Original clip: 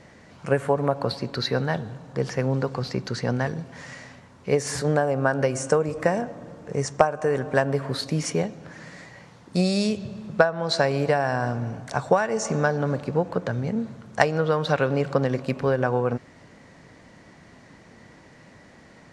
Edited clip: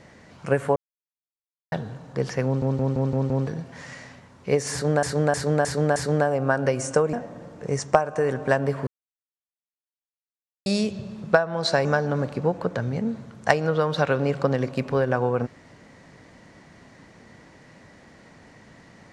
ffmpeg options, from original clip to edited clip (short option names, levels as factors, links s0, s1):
-filter_complex "[0:a]asplit=17[s0][s1][s2][s3][s4][s5][s6][s7][s8][s9][s10][s11][s12][s13][s14][s15][s16];[s0]atrim=end=0.76,asetpts=PTS-STARTPTS,afade=t=out:st=0.756:d=0.004:c=hsin[s17];[s1]atrim=start=0.76:end=1.72,asetpts=PTS-STARTPTS,volume=0[s18];[s2]atrim=start=1.72:end=2.622,asetpts=PTS-STARTPTS,afade=t=in:d=0.004:c=hsin[s19];[s3]atrim=start=2.448:end=2.622[s20];[s4]atrim=start=2.448:end=2.622[s21];[s5]atrim=start=2.448:end=2.622[s22];[s6]atrim=start=2.448:end=2.622[s23];[s7]atrim=start=2.448:end=2.622[s24];[s8]atrim=start=3.468:end=5.032[s25];[s9]atrim=start=4.718:end=5.032[s26];[s10]atrim=start=4.718:end=5.032[s27];[s11]atrim=start=4.718:end=5.032[s28];[s12]atrim=start=4.718:end=5.892[s29];[s13]atrim=start=6.188:end=7.93,asetpts=PTS-STARTPTS,afade=t=out:st=1.738:d=0.004:c=hsin[s30];[s14]atrim=start=7.93:end=9.72,asetpts=PTS-STARTPTS,volume=0[s31];[s15]atrim=start=9.72:end=10.912,asetpts=PTS-STARTPTS,afade=t=in:d=0.004:c=hsin[s32];[s16]atrim=start=12.558[s33];[s17][s18][s19]concat=n=3:v=0:a=1[s34];[s34][s20]acrossfade=d=0.004:c1=hsin:c2=hsin[s35];[s35][s21]acrossfade=d=0.004:c1=hsin:c2=hsin[s36];[s36][s22]acrossfade=d=0.004:c1=hsin:c2=hsin[s37];[s37][s23]acrossfade=d=0.004:c1=hsin:c2=hsin[s38];[s38][s24]acrossfade=d=0.004:c1=hsin:c2=hsin[s39];[s39][s25]acrossfade=d=0.004:c1=hsin:c2=hsin[s40];[s40][s26]acrossfade=d=0.004:c1=hsin:c2=hsin[s41];[s41][s27]acrossfade=d=0.004:c1=hsin:c2=hsin[s42];[s42][s28]acrossfade=d=0.004:c1=hsin:c2=hsin[s43];[s43][s29]acrossfade=d=0.004:c1=hsin:c2=hsin[s44];[s30][s31][s32]concat=n=3:v=0:a=1[s45];[s44][s45]acrossfade=d=0.004:c1=hsin:c2=hsin[s46];[s46][s33]acrossfade=d=0.004:c1=hsin:c2=hsin"